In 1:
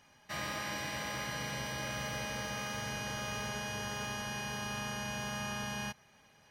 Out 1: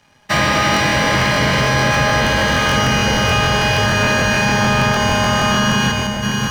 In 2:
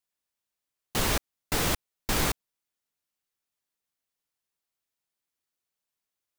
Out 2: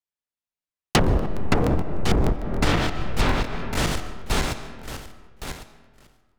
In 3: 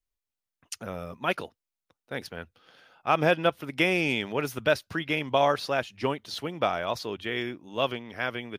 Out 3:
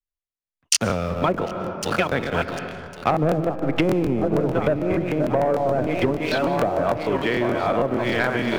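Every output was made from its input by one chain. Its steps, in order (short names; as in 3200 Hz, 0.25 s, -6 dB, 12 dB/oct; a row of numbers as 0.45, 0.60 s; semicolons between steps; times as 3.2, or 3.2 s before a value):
regenerating reverse delay 0.552 s, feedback 60%, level -7 dB; treble ducked by the level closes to 610 Hz, closed at -22.5 dBFS; sample leveller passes 2; high shelf 5600 Hz -6.5 dB; in parallel at -11 dB: sample gate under -37 dBFS; on the sum: low shelf 170 Hz +3.5 dB; digital reverb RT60 2.5 s, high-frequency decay 0.5×, pre-delay 95 ms, DRR 12 dB; compressor 12:1, threshold -29 dBFS; crackling interface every 0.15 s, samples 1024, repeat, from 0.72; three-band expander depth 40%; normalise peaks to -3 dBFS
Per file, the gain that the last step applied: +18.0, +12.5, +11.0 dB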